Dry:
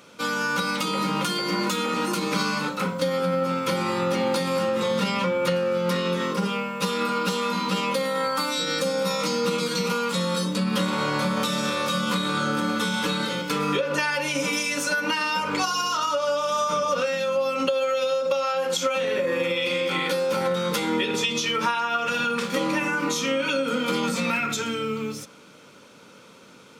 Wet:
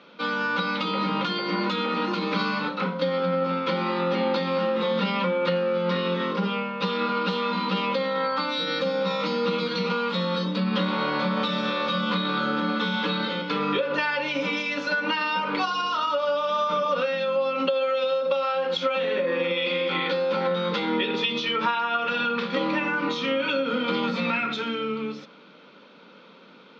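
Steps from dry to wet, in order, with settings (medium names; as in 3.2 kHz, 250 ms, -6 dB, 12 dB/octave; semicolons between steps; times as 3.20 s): elliptic band-pass 180–4000 Hz, stop band 40 dB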